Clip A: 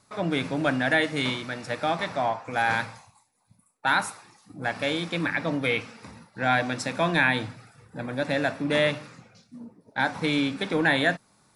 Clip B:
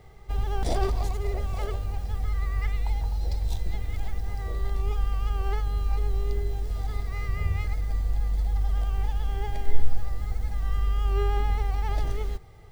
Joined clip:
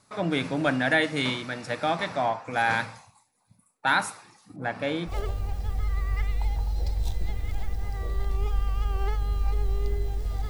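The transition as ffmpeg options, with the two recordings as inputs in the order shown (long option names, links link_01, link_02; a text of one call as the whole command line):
ffmpeg -i cue0.wav -i cue1.wav -filter_complex "[0:a]asettb=1/sr,asplit=3[link_01][link_02][link_03];[link_01]atrim=end=4.564[link_04];[link_02]atrim=start=4.56:end=5.15,asetpts=PTS-STARTPTS,afade=type=in:duration=0.004:curve=qsin,afade=type=out:start_time=0.586:duration=0.004:curve=qsin,highshelf=frequency=2700:gain=-11.5[link_05];[link_03]atrim=start=5.146[link_06];[link_04][link_05]acrossfade=duration=0.004:curve1=hsin:curve2=qsin[link_07];[link_07][link_06]acrossfade=duration=0.004:curve1=qsin:curve2=hsin,apad=whole_dur=10.49,atrim=end=10.49,atrim=end=5.15,asetpts=PTS-STARTPTS[link_08];[1:a]atrim=start=1.5:end=6.94,asetpts=PTS-STARTPTS[link_09];[link_08][link_09]acrossfade=duration=0.1:curve1=tri:curve2=tri" out.wav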